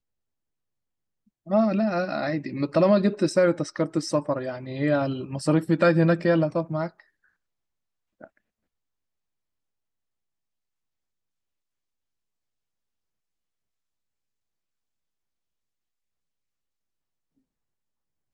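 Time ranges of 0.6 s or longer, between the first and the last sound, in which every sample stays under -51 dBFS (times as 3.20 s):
7.01–8.21 s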